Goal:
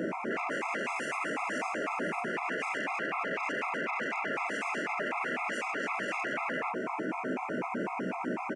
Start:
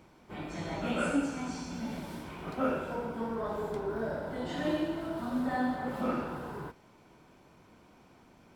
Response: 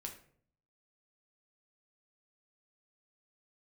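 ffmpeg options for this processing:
-filter_complex "[0:a]asplit=2[s0][s1];[s1]acompressor=threshold=0.00501:ratio=6,volume=1.33[s2];[s0][s2]amix=inputs=2:normalize=0,asoftclip=type=hard:threshold=0.0447,asplit=2[s3][s4];[s4]aecho=0:1:16|38:0.631|0.473[s5];[s3][s5]amix=inputs=2:normalize=0,aeval=exprs='0.0944*sin(PI/2*7.94*val(0)/0.0944)':c=same,firequalizer=gain_entry='entry(2500,0);entry(3600,-25);entry(5900,-15)':delay=0.05:min_phase=1,aresample=22050,aresample=44100,highpass=f=210:w=0.5412,highpass=f=210:w=1.3066,alimiter=limit=0.0708:level=0:latency=1:release=22,afftfilt=real='re*gt(sin(2*PI*4*pts/sr)*(1-2*mod(floor(b*sr/1024/680),2)),0)':imag='im*gt(sin(2*PI*4*pts/sr)*(1-2*mod(floor(b*sr/1024/680),2)),0)':win_size=1024:overlap=0.75"

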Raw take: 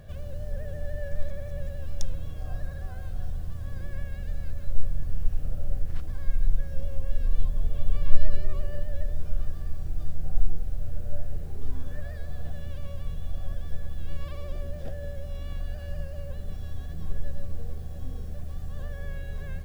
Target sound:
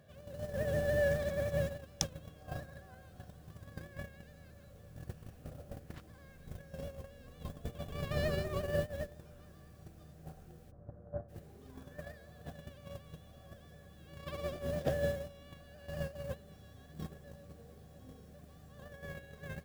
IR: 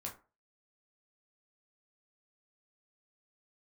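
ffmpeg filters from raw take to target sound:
-filter_complex "[0:a]highpass=150,agate=range=0.112:threshold=0.00891:ratio=16:detection=peak,asplit=3[s0][s1][s2];[s0]afade=t=out:st=10.7:d=0.02[s3];[s1]lowpass=f=1300:w=0.5412,lowpass=f=1300:w=1.3066,afade=t=in:st=10.7:d=0.02,afade=t=out:st=11.28:d=0.02[s4];[s2]afade=t=in:st=11.28:d=0.02[s5];[s3][s4][s5]amix=inputs=3:normalize=0,volume=3.16"

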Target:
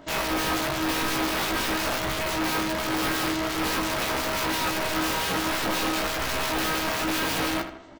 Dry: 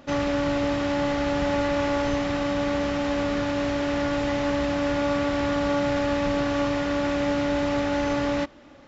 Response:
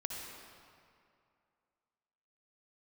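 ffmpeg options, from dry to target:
-filter_complex "[0:a]bandreject=f=2200:w=11,asetrate=48951,aresample=44100,flanger=delay=17:depth=4.8:speed=0.48,aeval=exprs='(mod(15*val(0)+1,2)-1)/15':c=same,acrossover=split=2500[s0][s1];[s0]aeval=exprs='val(0)*(1-0.5/2+0.5/2*cos(2*PI*5.8*n/s))':c=same[s2];[s1]aeval=exprs='val(0)*(1-0.5/2-0.5/2*cos(2*PI*5.8*n/s))':c=same[s3];[s2][s3]amix=inputs=2:normalize=0,volume=29.9,asoftclip=hard,volume=0.0335,asplit=2[s4][s5];[s5]adelay=15,volume=0.501[s6];[s4][s6]amix=inputs=2:normalize=0,asplit=2[s7][s8];[s8]adelay=79,lowpass=f=3100:p=1,volume=0.355,asplit=2[s9][s10];[s10]adelay=79,lowpass=f=3100:p=1,volume=0.48,asplit=2[s11][s12];[s12]adelay=79,lowpass=f=3100:p=1,volume=0.48,asplit=2[s13][s14];[s14]adelay=79,lowpass=f=3100:p=1,volume=0.48,asplit=2[s15][s16];[s16]adelay=79,lowpass=f=3100:p=1,volume=0.48[s17];[s7][s9][s11][s13][s15][s17]amix=inputs=6:normalize=0,volume=1.88"

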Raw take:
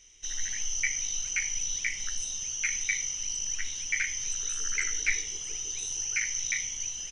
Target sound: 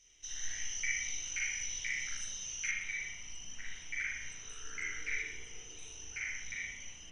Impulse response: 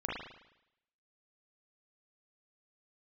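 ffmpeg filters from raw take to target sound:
-filter_complex "[0:a]asetnsamples=n=441:p=0,asendcmd='2.71 equalizer g -6.5',equalizer=f=5600:w=0.59:g=2.5[s0];[1:a]atrim=start_sample=2205[s1];[s0][s1]afir=irnorm=-1:irlink=0,volume=0.355"

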